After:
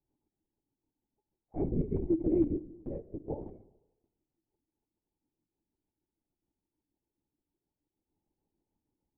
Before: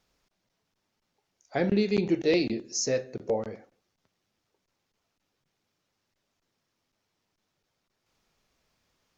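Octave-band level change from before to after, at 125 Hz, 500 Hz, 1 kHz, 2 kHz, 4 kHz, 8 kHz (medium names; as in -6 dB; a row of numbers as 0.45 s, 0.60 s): -2.0 dB, -8.5 dB, -12.5 dB, under -35 dB, under -40 dB, no reading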